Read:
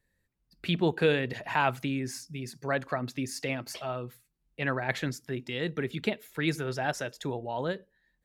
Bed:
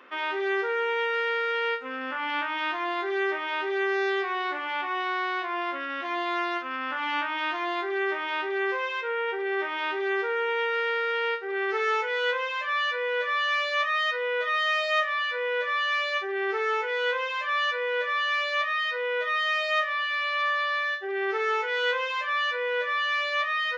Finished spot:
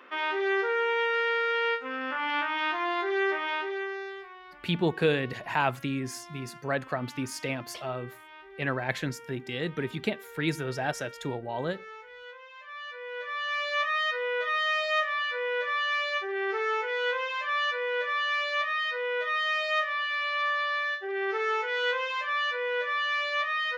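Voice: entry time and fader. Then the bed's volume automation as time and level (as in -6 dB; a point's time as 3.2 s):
4.00 s, 0.0 dB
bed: 3.49 s 0 dB
4.41 s -19.5 dB
12.41 s -19.5 dB
13.76 s -2 dB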